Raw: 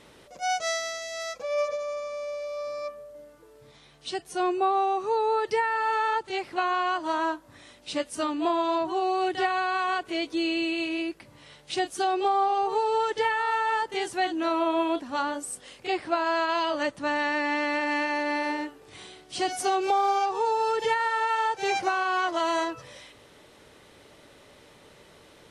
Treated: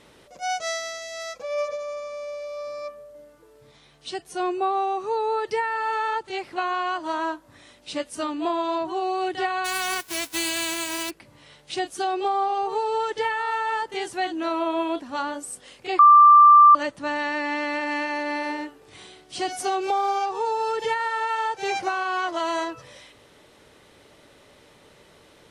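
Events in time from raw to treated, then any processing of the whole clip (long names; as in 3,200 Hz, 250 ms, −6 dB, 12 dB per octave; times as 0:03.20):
0:09.64–0:11.09: spectral envelope flattened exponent 0.1
0:15.99–0:16.75: beep over 1,180 Hz −8 dBFS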